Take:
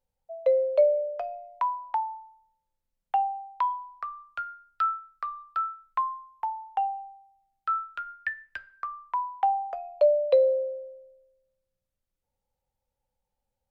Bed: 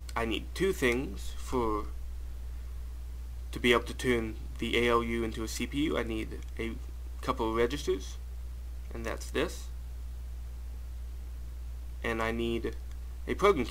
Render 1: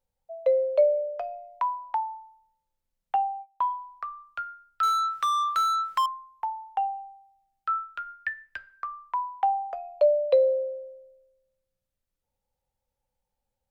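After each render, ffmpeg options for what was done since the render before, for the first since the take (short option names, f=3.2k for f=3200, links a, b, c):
-filter_complex "[0:a]asettb=1/sr,asplit=3[a][b][c];[a]atrim=end=3.154[d];[b]atrim=start=3.15:end=3.78,asetpts=PTS-STARTPTS,afade=t=in:d=0.004:c=qsin,afade=t=out:st=0.626:d=0.004:c=qsin,agate=range=-20dB:threshold=-41dB:ratio=16:release=100:detection=peak[e];[c]atrim=start=3.776[f];[d][e]acrossfade=d=0.004:c1=hsin:c2=qsin[g];[g][f]acrossfade=d=0.004:c1=qsin:c2=hsin,asettb=1/sr,asplit=3[h][i][j];[h]atrim=end=4.834[k];[i]atrim=start=4.83:end=6.06,asetpts=PTS-STARTPTS,afade=t=in:d=0.004:c=qsin,afade=t=out:st=1.226:d=0.004:c=qsin,asplit=2[l][m];[m]highpass=f=720:p=1,volume=38dB,asoftclip=type=tanh:threshold=-17.5dB[n];[l][n]amix=inputs=2:normalize=0,lowpass=f=2.5k:p=1,volume=-6dB[o];[j]atrim=start=6.056[p];[k][o]acrossfade=d=0.004:c1=hsin:c2=qsin[q];[q][p]acrossfade=d=0.004:c1=qsin:c2=hsin"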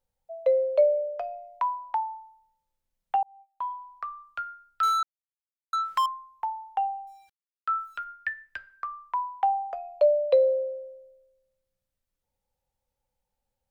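-filter_complex "[0:a]asettb=1/sr,asplit=3[a][b][c];[a]atrim=end=7.074[d];[b]atrim=start=7.07:end=8.04,asetpts=PTS-STARTPTS,afade=t=in:d=0.004:c=qsin,afade=t=out:st=0.966:d=0.004:c=qsin,aeval=exprs='val(0)*gte(abs(val(0)),0.00133)':c=same[e];[c]atrim=start=8.036[f];[d][e]acrossfade=d=0.004:c1=hsin:c2=qsin[g];[g][f]acrossfade=d=0.004:c1=qsin:c2=hsin,asplit=4[h][i][j][k];[h]atrim=end=3.23,asetpts=PTS-STARTPTS,afade=t=out:st=3.226:d=0.004:c=hsin[l];[i]atrim=start=3.23:end=5.03,asetpts=PTS-STARTPTS,afade=t=in:d=0.81,afade=t=out:st=1.796:d=0.004:c=hsin[m];[j]atrim=start=5.03:end=5.73,asetpts=PTS-STARTPTS,volume=0[n];[k]atrim=start=5.73,asetpts=PTS-STARTPTS,afade=t=in:d=0.004:c=hsin[o];[l][m][n][o]concat=n=4:v=0:a=1"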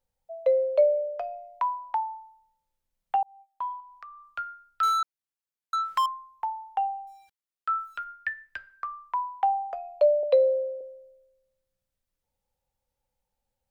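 -filter_complex "[0:a]asettb=1/sr,asplit=3[a][b][c];[a]atrim=end=3.804[d];[b]atrim=start=3.8:end=4.27,asetpts=PTS-STARTPTS,afade=t=in:d=0.004:c=qsin,afade=t=out:st=0.466:d=0.004:c=qsin,acompressor=threshold=-49dB:ratio=2:attack=3.2:release=140:knee=1:detection=peak[e];[c]atrim=start=4.266[f];[d][e]acrossfade=d=0.004:c1=hsin:c2=qsin[g];[g][f]acrossfade=d=0.004:c1=qsin:c2=hsin,asettb=1/sr,asplit=3[h][i][j];[h]atrim=end=10.234[k];[i]atrim=start=10.23:end=10.81,asetpts=PTS-STARTPTS,afade=t=in:d=0.004:c=qsin,afade=t=out:st=0.576:d=0.004:c=qsin,highpass=f=250:w=0.5412,highpass=f=250:w=1.3066[l];[j]atrim=start=10.806[m];[k][l]acrossfade=d=0.004:c1=hsin:c2=qsin[n];[n][m]acrossfade=d=0.004:c1=qsin:c2=hsin"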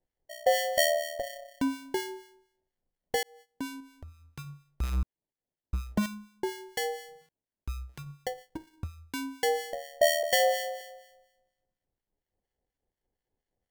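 -filter_complex "[0:a]acrusher=samples=35:mix=1:aa=0.000001,acrossover=split=1200[a][b];[a]aeval=exprs='val(0)*(1-0.7/2+0.7/2*cos(2*PI*4.2*n/s))':c=same[c];[b]aeval=exprs='val(0)*(1-0.7/2-0.7/2*cos(2*PI*4.2*n/s))':c=same[d];[c][d]amix=inputs=2:normalize=0"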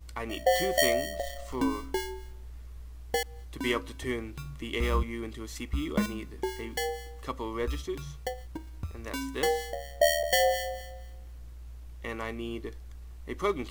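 -filter_complex "[1:a]volume=-4.5dB[a];[0:a][a]amix=inputs=2:normalize=0"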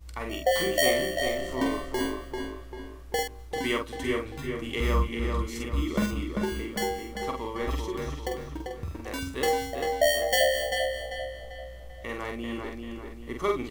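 -filter_complex "[0:a]asplit=2[a][b];[b]adelay=47,volume=-4dB[c];[a][c]amix=inputs=2:normalize=0,asplit=2[d][e];[e]adelay=393,lowpass=f=3.5k:p=1,volume=-4dB,asplit=2[f][g];[g]adelay=393,lowpass=f=3.5k:p=1,volume=0.46,asplit=2[h][i];[i]adelay=393,lowpass=f=3.5k:p=1,volume=0.46,asplit=2[j][k];[k]adelay=393,lowpass=f=3.5k:p=1,volume=0.46,asplit=2[l][m];[m]adelay=393,lowpass=f=3.5k:p=1,volume=0.46,asplit=2[n][o];[o]adelay=393,lowpass=f=3.5k:p=1,volume=0.46[p];[d][f][h][j][l][n][p]amix=inputs=7:normalize=0"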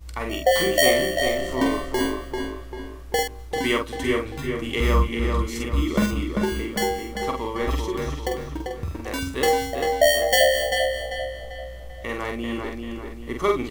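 -af "volume=5.5dB"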